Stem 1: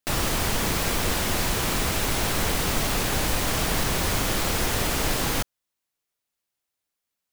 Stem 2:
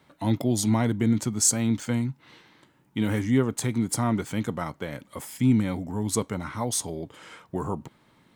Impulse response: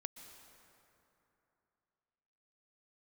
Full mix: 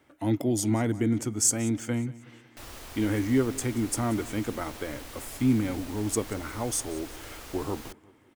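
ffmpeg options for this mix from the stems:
-filter_complex "[0:a]adelay=2500,volume=-18.5dB[a];[1:a]equalizer=f=315:t=o:w=0.33:g=7,equalizer=f=1k:t=o:w=0.33:g=-6,equalizer=f=4k:t=o:w=0.33:g=-11,volume=-1.5dB,asplit=2[b][c];[c]volume=-19.5dB,aecho=0:1:182|364|546|728|910|1092:1|0.43|0.185|0.0795|0.0342|0.0147[d];[a][b][d]amix=inputs=3:normalize=0,equalizer=f=170:t=o:w=0.43:g=-14"

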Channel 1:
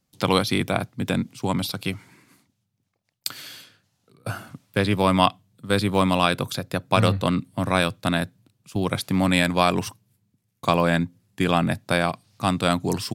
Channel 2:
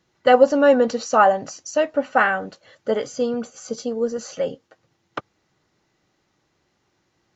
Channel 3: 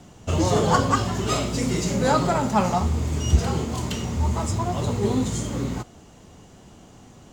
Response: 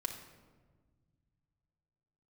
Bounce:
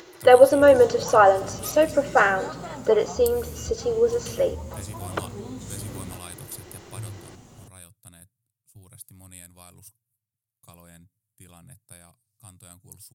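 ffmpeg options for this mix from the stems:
-filter_complex "[0:a]firequalizer=gain_entry='entry(130,0);entry(190,-15);entry(3100,-12);entry(9300,13)':delay=0.05:min_phase=1,volume=-10dB,afade=t=out:st=6.73:d=0.61:silence=0.354813[a];[1:a]lowshelf=f=270:t=q:w=3:g=-8.5,acompressor=mode=upward:threshold=-30dB:ratio=2.5,volume=-3dB,asplit=2[b][c];[c]volume=-10.5dB[d];[2:a]highshelf=f=9.5k:g=8.5,acompressor=threshold=-37dB:ratio=2.5,adelay=350,volume=-2.5dB[e];[3:a]atrim=start_sample=2205[f];[d][f]afir=irnorm=-1:irlink=0[g];[a][b][e][g]amix=inputs=4:normalize=0"

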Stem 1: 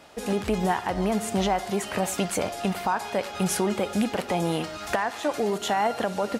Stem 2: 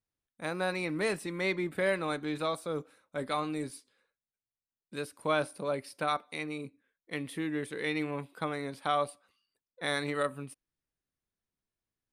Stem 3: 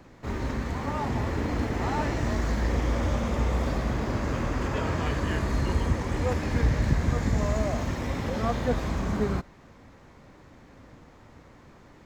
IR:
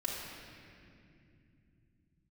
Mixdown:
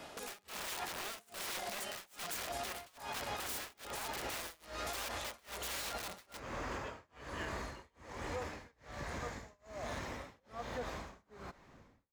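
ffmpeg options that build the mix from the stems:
-filter_complex "[0:a]aeval=exprs='(mod(18.8*val(0)+1,2)-1)/18.8':c=same,volume=0dB,asplit=2[a][b];[b]volume=-17dB[c];[1:a]volume=-18dB[d];[2:a]adelay=2100,volume=-6dB[e];[3:a]atrim=start_sample=2205[f];[c][f]afir=irnorm=-1:irlink=0[g];[a][d][e][g]amix=inputs=4:normalize=0,acrossover=split=430|3000[h][i][j];[h]acompressor=threshold=-47dB:ratio=3[k];[k][i][j]amix=inputs=3:normalize=0,tremolo=f=1.2:d=0.99,alimiter=level_in=7dB:limit=-24dB:level=0:latency=1:release=47,volume=-7dB"

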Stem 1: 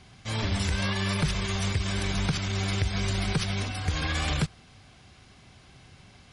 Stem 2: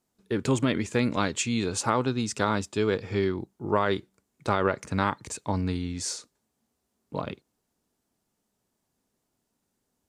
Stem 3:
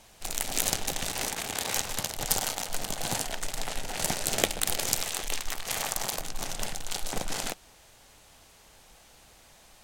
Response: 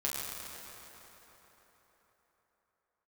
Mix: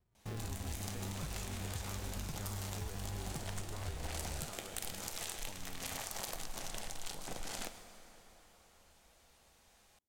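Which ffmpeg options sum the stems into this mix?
-filter_complex "[0:a]lowshelf=f=110:g=11,acrusher=samples=38:mix=1:aa=0.000001:lfo=1:lforange=22.8:lforate=0.42,volume=-9.5dB[a];[1:a]acompressor=threshold=-32dB:ratio=4,volume=-18.5dB,asplit=2[b][c];[2:a]acompressor=threshold=-34dB:ratio=2.5,adelay=150,volume=1dB,asplit=2[d][e];[e]volume=-19dB[f];[c]apad=whole_len=440451[g];[d][g]sidechaincompress=threshold=-59dB:ratio=8:attack=16:release=157[h];[a][h]amix=inputs=2:normalize=0,agate=range=-21dB:threshold=-47dB:ratio=16:detection=peak,acompressor=threshold=-40dB:ratio=6,volume=0dB[i];[3:a]atrim=start_sample=2205[j];[f][j]afir=irnorm=-1:irlink=0[k];[b][i][k]amix=inputs=3:normalize=0"

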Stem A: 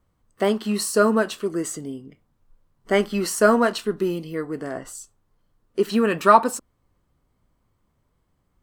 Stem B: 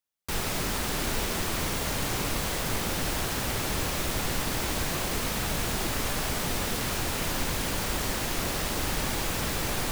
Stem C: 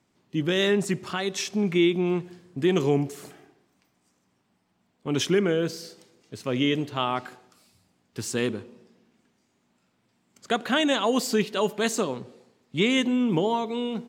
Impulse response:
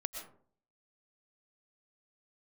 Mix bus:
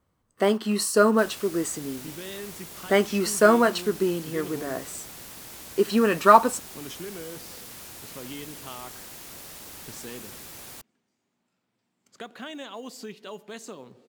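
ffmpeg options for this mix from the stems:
-filter_complex "[0:a]volume=-0.5dB[a];[1:a]aemphasis=mode=production:type=cd,adelay=900,volume=-16dB[b];[2:a]acompressor=threshold=-34dB:ratio=2,adelay=1700,volume=-7.5dB[c];[a][b][c]amix=inputs=3:normalize=0,highpass=f=110:p=1,acrusher=bits=8:mode=log:mix=0:aa=0.000001"

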